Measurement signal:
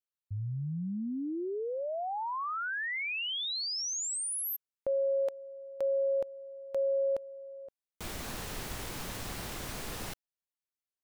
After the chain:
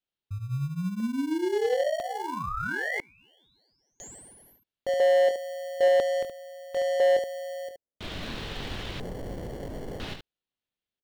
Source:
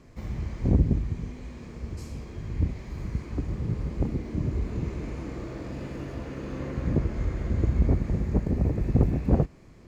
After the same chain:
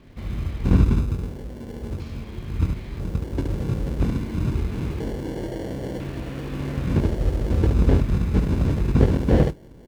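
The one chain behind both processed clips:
ambience of single reflections 22 ms −6 dB, 72 ms −6 dB
auto-filter low-pass square 0.5 Hz 540–3,500 Hz
in parallel at −5 dB: decimation without filtering 35×
on the sum: slew-rate limiting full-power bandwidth 140 Hz
level −1 dB

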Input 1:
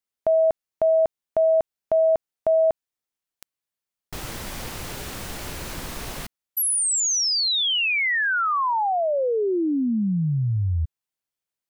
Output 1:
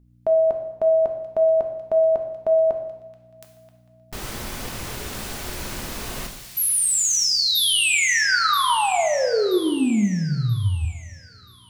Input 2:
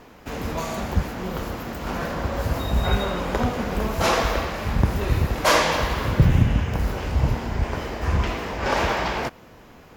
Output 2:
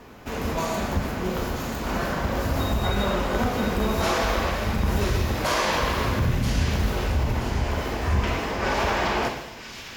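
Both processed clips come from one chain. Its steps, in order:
mains hum 60 Hz, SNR 31 dB
brickwall limiter −16 dBFS
on a send: delay with a high-pass on its return 980 ms, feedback 37%, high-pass 2,900 Hz, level −5 dB
on the sum: coupled-rooms reverb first 0.91 s, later 2.4 s, from −19 dB, DRR 3 dB

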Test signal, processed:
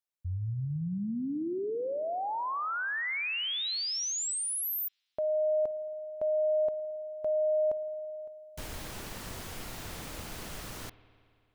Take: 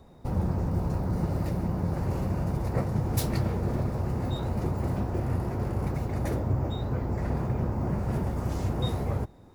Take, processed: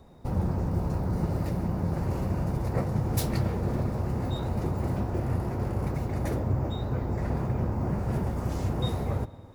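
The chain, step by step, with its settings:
spring reverb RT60 2.4 s, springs 55 ms, chirp 65 ms, DRR 15.5 dB

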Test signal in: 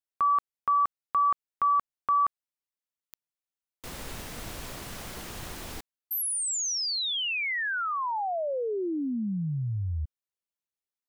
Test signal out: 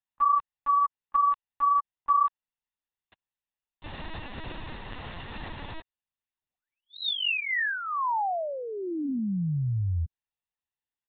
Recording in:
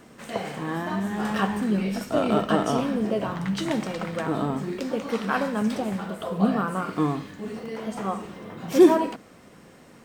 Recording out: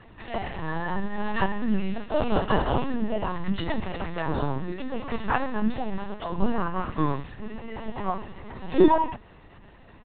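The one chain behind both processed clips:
comb filter 1.1 ms, depth 47%
linear-prediction vocoder at 8 kHz pitch kept

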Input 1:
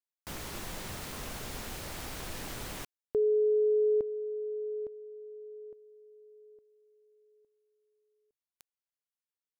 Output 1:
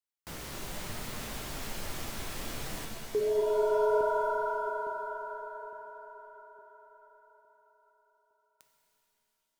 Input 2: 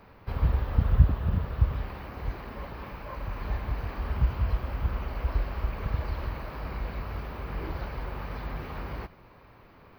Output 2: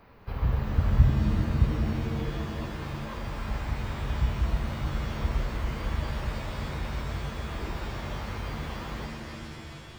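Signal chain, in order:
flanger 0.67 Hz, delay 2.6 ms, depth 8.6 ms, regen +79%
reverb with rising layers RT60 3 s, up +7 semitones, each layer −2 dB, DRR 3 dB
level +2.5 dB

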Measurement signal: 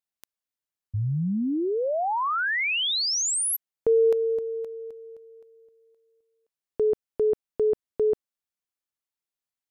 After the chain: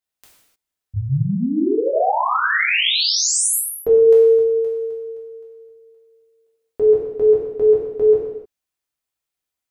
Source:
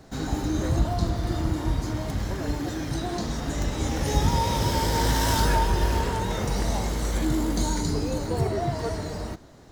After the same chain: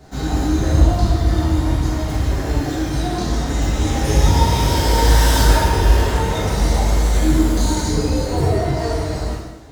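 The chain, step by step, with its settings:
reverb whose tail is shaped and stops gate 330 ms falling, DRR −6.5 dB

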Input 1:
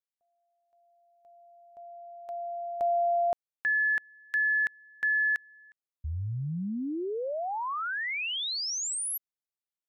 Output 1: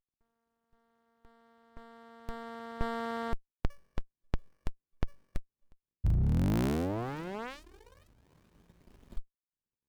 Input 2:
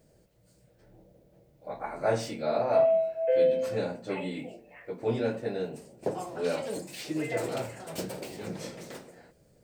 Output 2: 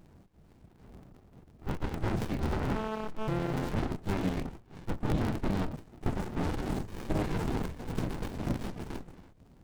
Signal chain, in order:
sub-harmonics by changed cycles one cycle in 3, inverted
brickwall limiter −25 dBFS
reverb reduction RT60 0.53 s
windowed peak hold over 65 samples
level +8.5 dB

